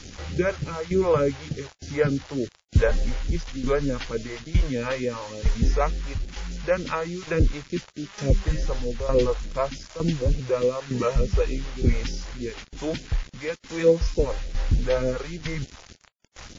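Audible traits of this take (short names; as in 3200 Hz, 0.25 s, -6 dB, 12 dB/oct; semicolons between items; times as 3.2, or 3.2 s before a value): tremolo saw down 1.1 Hz, depth 80%; a quantiser's noise floor 8-bit, dither none; phasing stages 2, 3.4 Hz, lowest notch 210–1100 Hz; WMA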